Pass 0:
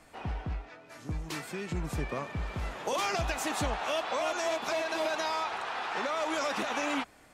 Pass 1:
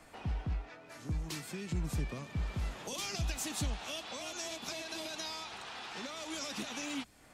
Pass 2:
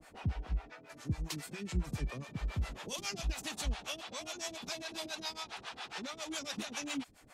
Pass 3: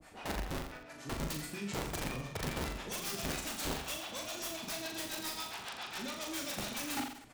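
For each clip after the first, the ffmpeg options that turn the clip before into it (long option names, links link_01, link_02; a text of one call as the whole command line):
ffmpeg -i in.wav -filter_complex "[0:a]acrossover=split=270|3000[link_01][link_02][link_03];[link_02]acompressor=threshold=-49dB:ratio=4[link_04];[link_01][link_04][link_03]amix=inputs=3:normalize=0" out.wav
ffmpeg -i in.wav -filter_complex "[0:a]acrossover=split=460[link_01][link_02];[link_01]aeval=exprs='val(0)*(1-1/2+1/2*cos(2*PI*7.3*n/s))':channel_layout=same[link_03];[link_02]aeval=exprs='val(0)*(1-1/2-1/2*cos(2*PI*7.3*n/s))':channel_layout=same[link_04];[link_03][link_04]amix=inputs=2:normalize=0,volume=4dB" out.wav
ffmpeg -i in.wav -filter_complex "[0:a]aeval=exprs='(mod(42.2*val(0)+1,2)-1)/42.2':channel_layout=same,asplit=2[link_01][link_02];[link_02]aecho=0:1:40|84|132.4|185.6|244.2:0.631|0.398|0.251|0.158|0.1[link_03];[link_01][link_03]amix=inputs=2:normalize=0" out.wav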